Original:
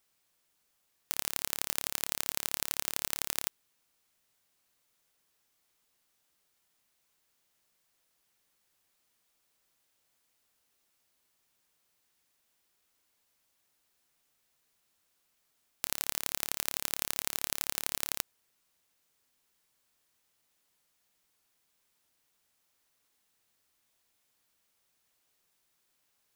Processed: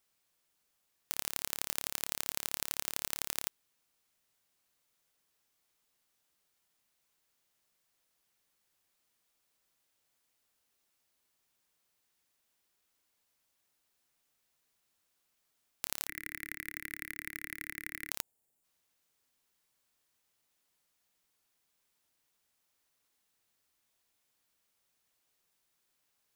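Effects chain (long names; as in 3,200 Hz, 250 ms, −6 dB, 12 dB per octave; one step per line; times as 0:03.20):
0:16.07–0:18.11: drawn EQ curve 130 Hz 0 dB, 210 Hz −6 dB, 310 Hz +7 dB, 500 Hz −19 dB, 840 Hz −27 dB, 2,000 Hz +12 dB, 3,000 Hz −13 dB, 6,600 Hz −17 dB, 11,000 Hz −9 dB
0:18.21–0:18.64: gain on a spectral selection 910–6,700 Hz −9 dB
level −3 dB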